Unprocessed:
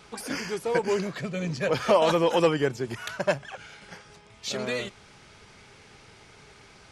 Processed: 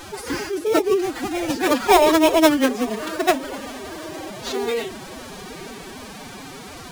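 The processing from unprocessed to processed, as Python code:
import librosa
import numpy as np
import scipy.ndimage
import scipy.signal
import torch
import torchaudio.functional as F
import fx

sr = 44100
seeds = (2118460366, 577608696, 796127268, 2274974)

p1 = fx.delta_mod(x, sr, bps=64000, step_db=-37.0)
p2 = fx.sample_hold(p1, sr, seeds[0], rate_hz=3000.0, jitter_pct=0)
p3 = p1 + F.gain(torch.from_numpy(p2), -3.0).numpy()
p4 = fx.hum_notches(p3, sr, base_hz=60, count=7)
p5 = fx.echo_diffused(p4, sr, ms=927, feedback_pct=51, wet_db=-16.0)
p6 = fx.pitch_keep_formants(p5, sr, semitones=11.0)
y = F.gain(torch.from_numpy(p6), 3.5).numpy()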